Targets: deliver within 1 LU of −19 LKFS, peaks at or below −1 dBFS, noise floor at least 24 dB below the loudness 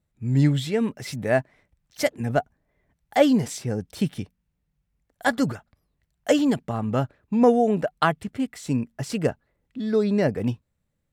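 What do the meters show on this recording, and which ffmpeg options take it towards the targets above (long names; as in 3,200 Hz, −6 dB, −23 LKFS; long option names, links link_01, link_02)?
integrated loudness −24.0 LKFS; sample peak −4.5 dBFS; target loudness −19.0 LKFS
→ -af "volume=5dB,alimiter=limit=-1dB:level=0:latency=1"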